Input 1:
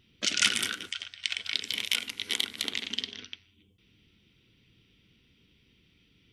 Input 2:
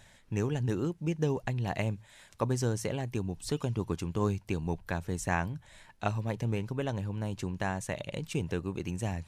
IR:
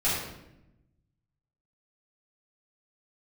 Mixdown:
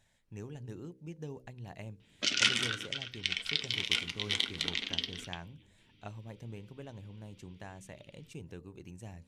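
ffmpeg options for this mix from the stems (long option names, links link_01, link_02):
-filter_complex "[0:a]bandreject=frequency=1700:width=23,flanger=delay=6.1:depth=3.1:regen=-66:speed=0.7:shape=triangular,lowpass=6000,adelay=2000,volume=3dB[link_01];[1:a]equalizer=frequency=1200:width_type=o:width=1.4:gain=-3.5,bandreject=frequency=63.99:width_type=h:width=4,bandreject=frequency=127.98:width_type=h:width=4,bandreject=frequency=191.97:width_type=h:width=4,bandreject=frequency=255.96:width_type=h:width=4,bandreject=frequency=319.95:width_type=h:width=4,bandreject=frequency=383.94:width_type=h:width=4,bandreject=frequency=447.93:width_type=h:width=4,bandreject=frequency=511.92:width_type=h:width=4,bandreject=frequency=575.91:width_type=h:width=4,volume=-13dB[link_02];[link_01][link_02]amix=inputs=2:normalize=0"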